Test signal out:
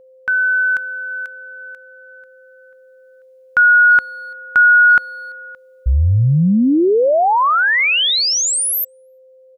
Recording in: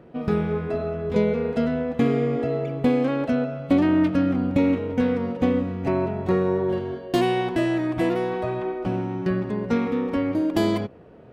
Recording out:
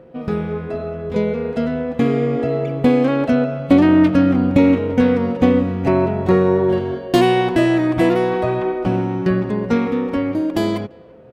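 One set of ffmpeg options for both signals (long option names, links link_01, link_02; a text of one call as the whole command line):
ffmpeg -i in.wav -filter_complex "[0:a]dynaudnorm=framelen=530:gausssize=9:maxgain=9dB,aeval=exprs='val(0)+0.00562*sin(2*PI*520*n/s)':channel_layout=same,asplit=2[link_01][link_02];[link_02]adelay=340,highpass=300,lowpass=3400,asoftclip=type=hard:threshold=-11.5dB,volume=-28dB[link_03];[link_01][link_03]amix=inputs=2:normalize=0,volume=1dB" out.wav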